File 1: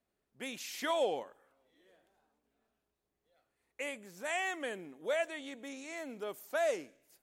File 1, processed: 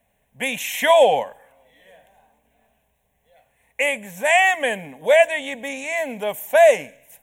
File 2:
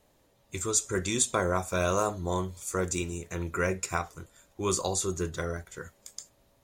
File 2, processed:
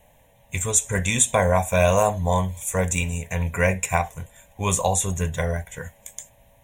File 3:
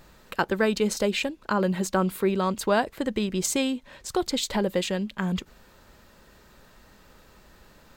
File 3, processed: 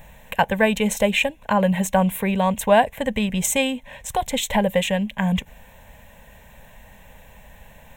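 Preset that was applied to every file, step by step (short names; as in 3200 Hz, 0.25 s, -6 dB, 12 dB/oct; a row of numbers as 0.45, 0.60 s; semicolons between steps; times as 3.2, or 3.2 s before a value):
fixed phaser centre 1300 Hz, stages 6; normalise peaks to -3 dBFS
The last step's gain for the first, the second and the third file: +20.5, +12.0, +10.0 dB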